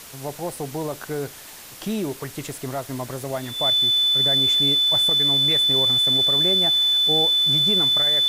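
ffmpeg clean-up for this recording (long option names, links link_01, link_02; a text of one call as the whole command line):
ffmpeg -i in.wav -af "bandreject=frequency=3500:width=30,afftdn=noise_reduction=28:noise_floor=-40" out.wav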